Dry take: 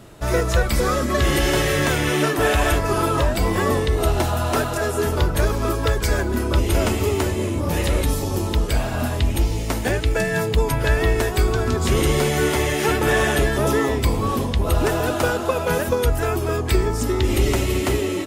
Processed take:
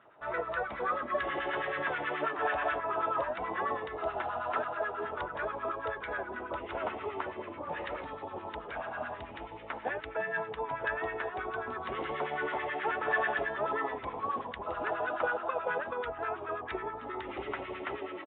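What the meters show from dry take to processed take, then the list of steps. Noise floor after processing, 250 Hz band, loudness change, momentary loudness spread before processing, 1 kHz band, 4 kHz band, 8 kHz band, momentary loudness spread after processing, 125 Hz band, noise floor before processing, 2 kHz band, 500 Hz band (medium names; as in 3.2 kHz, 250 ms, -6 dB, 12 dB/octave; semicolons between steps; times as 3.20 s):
-45 dBFS, -21.0 dB, -14.0 dB, 4 LU, -7.5 dB, -21.0 dB, under -40 dB, 8 LU, -31.5 dB, -25 dBFS, -9.5 dB, -14.0 dB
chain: resampled via 8 kHz; LFO band-pass sine 9.3 Hz 710–1600 Hz; trim -4 dB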